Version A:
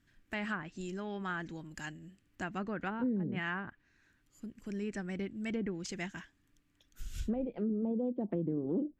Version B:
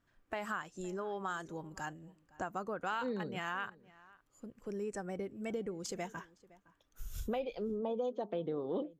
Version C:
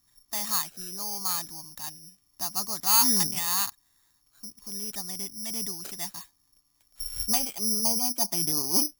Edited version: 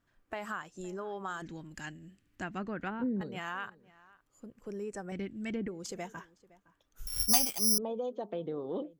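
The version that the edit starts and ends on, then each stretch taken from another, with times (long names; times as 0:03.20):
B
0:01.42–0:03.21: punch in from A
0:05.12–0:05.68: punch in from A
0:07.07–0:07.78: punch in from C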